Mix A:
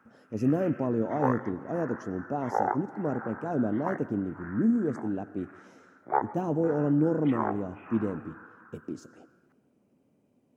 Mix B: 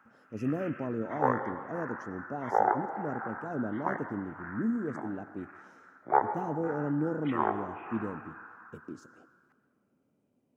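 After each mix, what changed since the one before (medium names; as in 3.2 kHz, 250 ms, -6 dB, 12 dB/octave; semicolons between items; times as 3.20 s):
speech -6.0 dB; background: send +10.0 dB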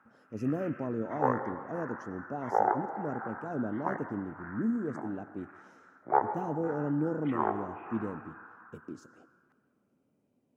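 background: add low-pass 1.6 kHz 6 dB/octave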